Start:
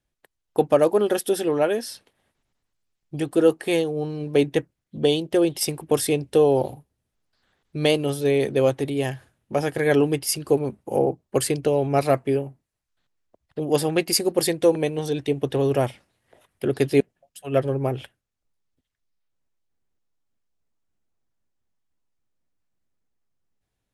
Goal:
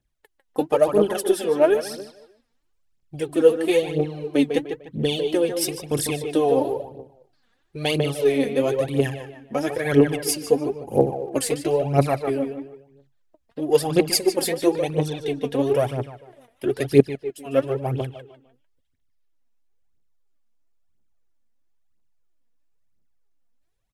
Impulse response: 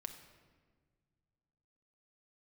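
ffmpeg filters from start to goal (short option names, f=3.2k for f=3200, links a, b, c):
-filter_complex "[0:a]asplit=2[a][b];[b]adelay=150,lowpass=f=3.6k:p=1,volume=-7dB,asplit=2[c][d];[d]adelay=150,lowpass=f=3.6k:p=1,volume=0.38,asplit=2[e][f];[f]adelay=150,lowpass=f=3.6k:p=1,volume=0.38,asplit=2[g][h];[h]adelay=150,lowpass=f=3.6k:p=1,volume=0.38[i];[a][c][e][g][i]amix=inputs=5:normalize=0,aphaser=in_gain=1:out_gain=1:delay=4.5:decay=0.67:speed=1:type=triangular,volume=-3dB"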